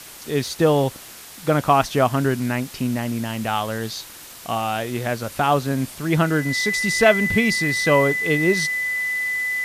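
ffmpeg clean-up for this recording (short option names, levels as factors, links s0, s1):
-af "bandreject=f=2000:w=30,afwtdn=0.011"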